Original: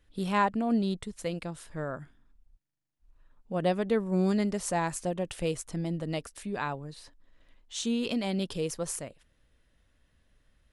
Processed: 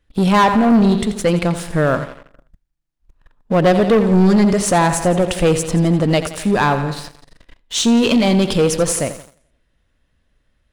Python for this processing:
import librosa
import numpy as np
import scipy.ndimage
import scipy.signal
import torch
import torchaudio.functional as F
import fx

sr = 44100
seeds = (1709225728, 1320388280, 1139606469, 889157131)

p1 = fx.echo_feedback(x, sr, ms=86, feedback_pct=58, wet_db=-13)
p2 = fx.leveller(p1, sr, passes=3)
p3 = fx.high_shelf(p2, sr, hz=7100.0, db=-5.5)
p4 = fx.rider(p3, sr, range_db=10, speed_s=2.0)
p5 = p3 + F.gain(torch.from_numpy(p4), -2.0).numpy()
y = F.gain(torch.from_numpy(p5), 2.5).numpy()